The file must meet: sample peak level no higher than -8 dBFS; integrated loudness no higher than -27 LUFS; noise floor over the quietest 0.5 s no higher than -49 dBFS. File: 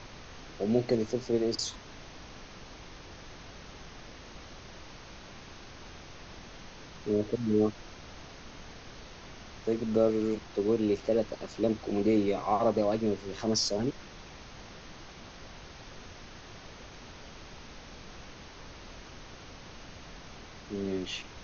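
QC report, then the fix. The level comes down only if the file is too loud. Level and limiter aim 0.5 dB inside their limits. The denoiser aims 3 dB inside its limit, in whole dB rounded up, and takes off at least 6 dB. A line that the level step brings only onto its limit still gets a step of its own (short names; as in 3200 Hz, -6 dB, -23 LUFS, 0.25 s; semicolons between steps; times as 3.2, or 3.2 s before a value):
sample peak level -13.5 dBFS: OK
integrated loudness -30.0 LUFS: OK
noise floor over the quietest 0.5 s -48 dBFS: fail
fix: denoiser 6 dB, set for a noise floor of -48 dBFS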